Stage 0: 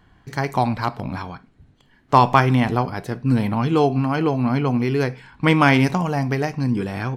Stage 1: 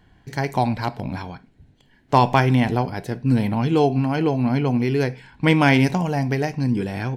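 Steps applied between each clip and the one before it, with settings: peaking EQ 1.2 kHz -11 dB 0.35 oct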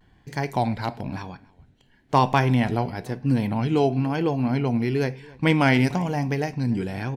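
echo from a far wall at 49 m, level -23 dB; vibrato 1 Hz 67 cents; trim -3 dB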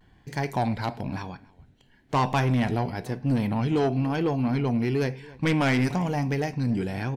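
saturation -17 dBFS, distortion -12 dB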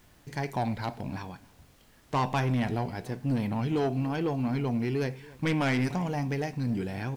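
added noise pink -57 dBFS; trim -4 dB

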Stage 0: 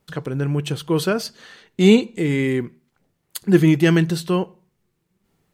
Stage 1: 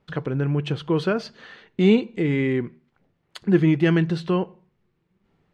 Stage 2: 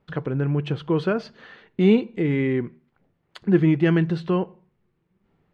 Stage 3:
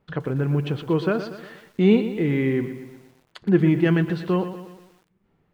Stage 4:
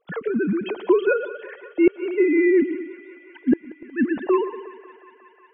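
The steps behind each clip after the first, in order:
low-pass 3.1 kHz 12 dB/octave; in parallel at +2 dB: compression, threshold -23 dBFS, peak gain reduction 14.5 dB; on the sum: trim -6 dB
treble shelf 4.7 kHz -11.5 dB
bit-crushed delay 119 ms, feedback 55%, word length 8-bit, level -11 dB
formants replaced by sine waves; inverted gate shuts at -11 dBFS, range -35 dB; thinning echo 182 ms, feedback 85%, high-pass 350 Hz, level -18 dB; trim +4.5 dB

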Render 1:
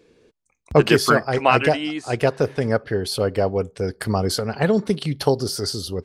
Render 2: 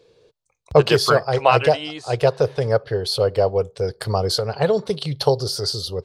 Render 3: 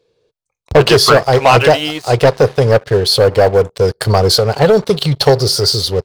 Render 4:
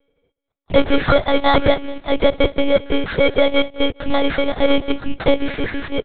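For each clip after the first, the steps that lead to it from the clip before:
graphic EQ 125/250/500/1000/2000/4000 Hz +8/-12/+9/+4/-4/+9 dB; trim -3.5 dB
waveshaping leveller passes 3
bit-reversed sample order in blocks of 16 samples; feedback delay 207 ms, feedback 26%, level -18 dB; monotone LPC vocoder at 8 kHz 280 Hz; trim -4 dB

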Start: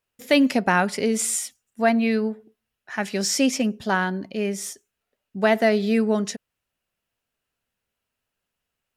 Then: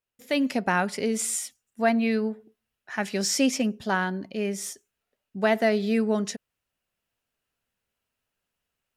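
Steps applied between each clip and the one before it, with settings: level rider gain up to 7.5 dB; trim -8.5 dB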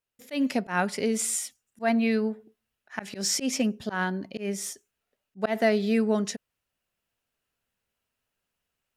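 slow attack 121 ms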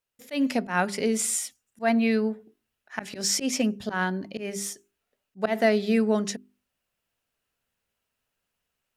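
hum notches 50/100/150/200/250/300/350/400 Hz; trim +1.5 dB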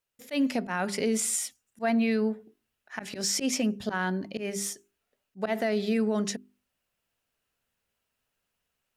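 peak limiter -18.5 dBFS, peak gain reduction 8.5 dB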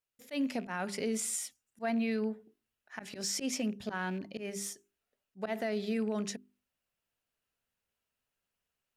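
rattle on loud lows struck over -37 dBFS, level -37 dBFS; trim -6.5 dB

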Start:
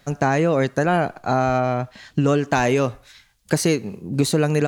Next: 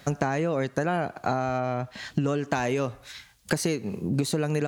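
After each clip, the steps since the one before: high-pass 52 Hz; compression 5:1, threshold -29 dBFS, peak gain reduction 14.5 dB; trim +5 dB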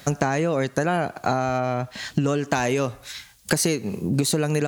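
treble shelf 4.9 kHz +7.5 dB; trim +3.5 dB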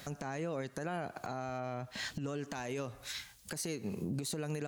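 compression 5:1, threshold -29 dBFS, peak gain reduction 12.5 dB; peak limiter -23 dBFS, peak gain reduction 9 dB; trim -5 dB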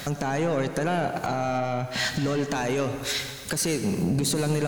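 in parallel at -10.5 dB: sine folder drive 6 dB, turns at -27.5 dBFS; on the sum: reverberation RT60 2.1 s, pre-delay 88 ms, DRR 9 dB; trim +8.5 dB

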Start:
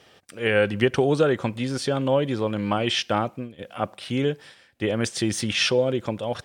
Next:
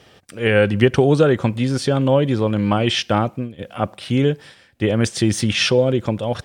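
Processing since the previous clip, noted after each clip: bass shelf 220 Hz +8 dB; trim +3.5 dB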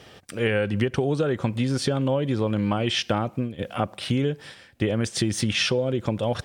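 compression, threshold -22 dBFS, peak gain reduction 13 dB; trim +1.5 dB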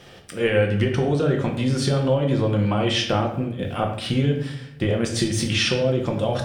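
reverberation RT60 0.75 s, pre-delay 6 ms, DRR 1.5 dB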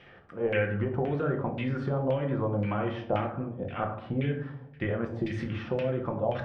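LFO low-pass saw down 1.9 Hz 700–2500 Hz; trim -9 dB

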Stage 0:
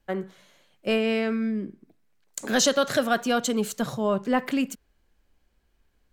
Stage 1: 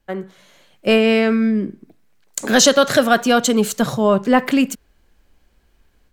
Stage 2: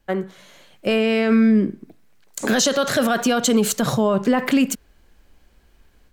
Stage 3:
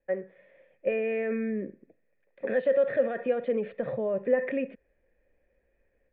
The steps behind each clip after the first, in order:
level rider gain up to 7.5 dB; trim +2.5 dB
peak limiter -12.5 dBFS, peak gain reduction 11.5 dB; trim +3 dB
cascade formant filter e; trim +1.5 dB

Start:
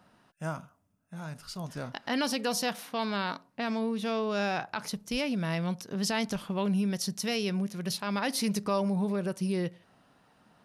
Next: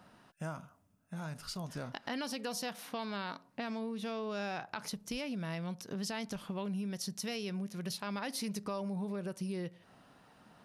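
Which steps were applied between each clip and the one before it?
compression 3:1, threshold -41 dBFS, peak gain reduction 12.5 dB; trim +2 dB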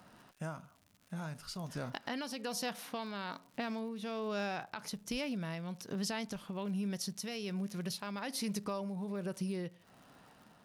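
crackle 140 per s -51 dBFS; tremolo triangle 1.2 Hz, depth 45%; trim +2 dB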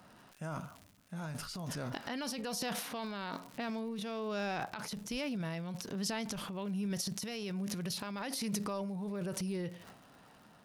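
transient shaper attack -2 dB, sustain +11 dB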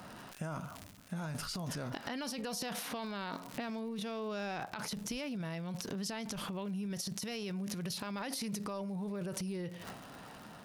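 compression 6:1, threshold -46 dBFS, peak gain reduction 14 dB; trim +9 dB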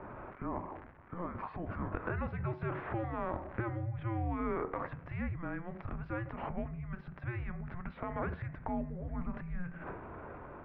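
de-hum 102.2 Hz, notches 29; mistuned SSB -350 Hz 260–2200 Hz; trim +6 dB

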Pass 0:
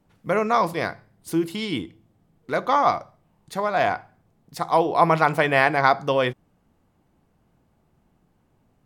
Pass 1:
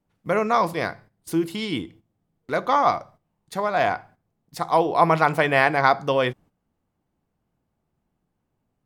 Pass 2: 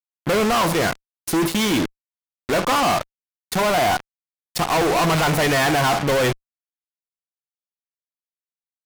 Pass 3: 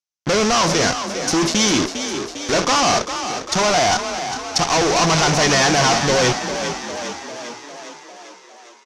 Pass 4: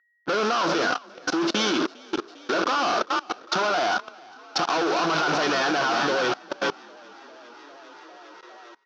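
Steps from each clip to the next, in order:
gate -47 dBFS, range -11 dB
fuzz box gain 43 dB, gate -36 dBFS; trim -3.5 dB
resonant low-pass 5.9 kHz, resonance Q 4.3; frequency-shifting echo 402 ms, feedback 63%, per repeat +36 Hz, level -9 dB; trim +1 dB
whistle 1.9 kHz -49 dBFS; cabinet simulation 290–4600 Hz, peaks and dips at 330 Hz +6 dB, 1.4 kHz +10 dB, 2 kHz -7 dB; level held to a coarse grid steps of 23 dB

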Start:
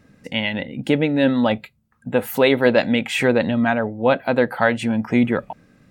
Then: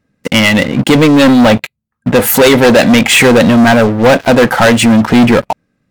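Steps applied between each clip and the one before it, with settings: dynamic bell 7.7 kHz, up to +6 dB, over -43 dBFS, Q 0.85; waveshaping leveller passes 5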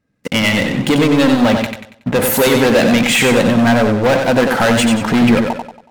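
transient shaper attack +1 dB, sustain +5 dB; modulated delay 93 ms, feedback 39%, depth 62 cents, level -5 dB; trim -7 dB

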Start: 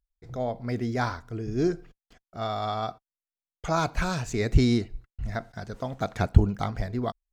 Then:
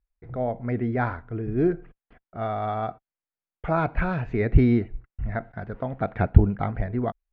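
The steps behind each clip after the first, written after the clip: low-pass 2.3 kHz 24 dB/octave; dynamic bell 1.1 kHz, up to -5 dB, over -48 dBFS, Q 3.1; trim +3 dB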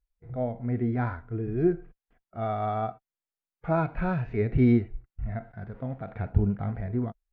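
harmonic-percussive split percussive -14 dB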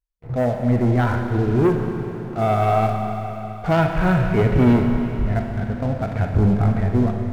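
waveshaping leveller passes 3; Schroeder reverb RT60 3.9 s, combs from 29 ms, DRR 3.5 dB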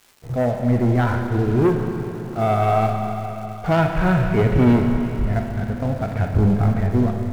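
crackle 590 per s -40 dBFS

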